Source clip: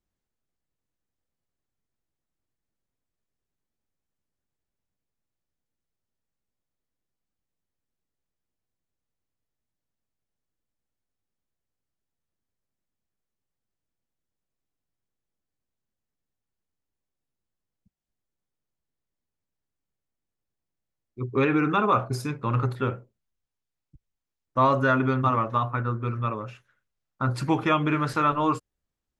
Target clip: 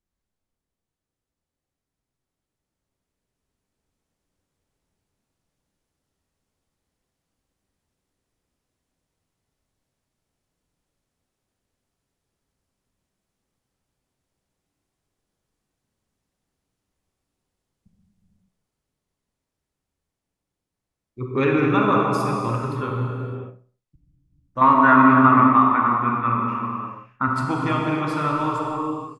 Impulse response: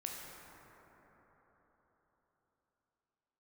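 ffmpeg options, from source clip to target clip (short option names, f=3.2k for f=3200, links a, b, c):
-filter_complex "[0:a]asettb=1/sr,asplit=3[a][b][c];[a]atrim=end=24.614[d];[b]atrim=start=24.61:end=27.28,asetpts=PTS-STARTPTS,afade=t=in:d=0.004:c=qsin,afade=t=out:st=2.666:d=0.004:c=qsin,equalizer=f=125:t=o:w=1:g=-3,equalizer=f=250:t=o:w=1:g=11,equalizer=f=500:t=o:w=1:g=-9,equalizer=f=1k:t=o:w=1:g=10,equalizer=f=2k:t=o:w=1:g=12,equalizer=f=4k:t=o:w=1:g=-6,equalizer=f=8k:t=o:w=1:g=-8[e];[c]atrim=start=27.276[f];[d][e]acrossfade=d=0.004:c1=hsin:c2=qsin[g];[g][f]acrossfade=d=0.004:c1=qsin:c2=hsin,asplit=2[h][i];[i]adelay=65,lowpass=f=2.5k:p=1,volume=-17dB,asplit=2[j][k];[k]adelay=65,lowpass=f=2.5k:p=1,volume=0.44,asplit=2[l][m];[m]adelay=65,lowpass=f=2.5k:p=1,volume=0.44,asplit=2[n][o];[o]adelay=65,lowpass=f=2.5k:p=1,volume=0.44[p];[h][j][l][n][p]amix=inputs=5:normalize=0[q];[1:a]atrim=start_sample=2205,afade=t=out:st=0.37:d=0.01,atrim=end_sample=16758,asetrate=22932,aresample=44100[r];[q][r]afir=irnorm=-1:irlink=0,dynaudnorm=f=520:g=13:m=10dB,volume=-1dB"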